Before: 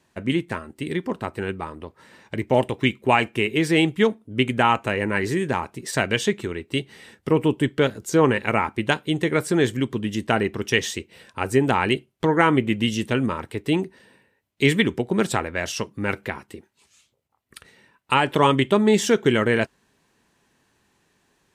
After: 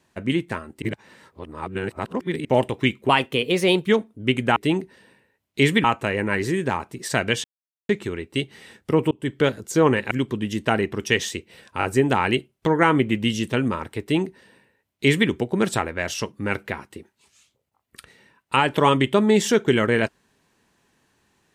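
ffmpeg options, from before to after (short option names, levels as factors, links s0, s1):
-filter_complex "[0:a]asplit=12[s0][s1][s2][s3][s4][s5][s6][s7][s8][s9][s10][s11];[s0]atrim=end=0.822[s12];[s1]atrim=start=0.818:end=2.452,asetpts=PTS-STARTPTS,areverse[s13];[s2]atrim=start=2.448:end=3.094[s14];[s3]atrim=start=3.09:end=3.98,asetpts=PTS-STARTPTS,asetrate=50274,aresample=44100[s15];[s4]atrim=start=3.976:end=4.672[s16];[s5]atrim=start=13.588:end=14.872[s17];[s6]atrim=start=4.668:end=6.27,asetpts=PTS-STARTPTS,afade=t=out:st=1.598:d=0.004:c=hsin,apad=pad_dur=0.45[s18];[s7]atrim=start=6.27:end=7.49,asetpts=PTS-STARTPTS,afade=t=in:d=0.004:c=hsin,afade=t=out:st=1.216:d=0.004:c=hsin[s19];[s8]atrim=start=7.49:end=8.492,asetpts=PTS-STARTPTS,afade=t=in:d=0.26[s20];[s9]atrim=start=9.728:end=11.432[s21];[s10]atrim=start=11.408:end=11.432[s22];[s11]atrim=start=11.408[s23];[s12][s13]acrossfade=d=0.004:c1=hsin:c2=hsin[s24];[s24][s14]acrossfade=d=0.004:c1=hsin:c2=hsin[s25];[s25][s15]acrossfade=d=0.004:c1=hsin:c2=hsin[s26];[s26][s16]acrossfade=d=0.004:c1=hsin:c2=hsin[s27];[s27][s17]acrossfade=d=0.004:c1=hsin:c2=hsin[s28];[s18][s19][s20]concat=n=3:v=0:a=1[s29];[s28][s29]acrossfade=d=0.004:c1=hsin:c2=hsin[s30];[s30][s21]acrossfade=d=0.004:c1=hsin:c2=hsin[s31];[s31][s22]acrossfade=d=0.004:c1=hsin:c2=hsin[s32];[s32][s23]acrossfade=d=0.004:c1=hsin:c2=hsin"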